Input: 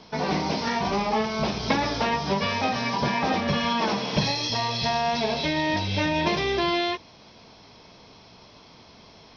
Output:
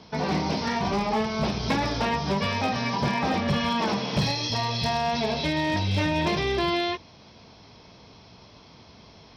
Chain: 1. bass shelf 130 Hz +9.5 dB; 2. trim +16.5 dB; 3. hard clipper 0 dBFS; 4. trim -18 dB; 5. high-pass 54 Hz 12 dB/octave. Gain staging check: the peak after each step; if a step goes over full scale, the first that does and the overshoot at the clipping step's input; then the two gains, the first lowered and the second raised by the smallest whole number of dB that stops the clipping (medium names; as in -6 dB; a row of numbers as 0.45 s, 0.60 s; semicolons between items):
-7.5 dBFS, +9.0 dBFS, 0.0 dBFS, -18.0 dBFS, -14.0 dBFS; step 2, 9.0 dB; step 2 +7.5 dB, step 4 -9 dB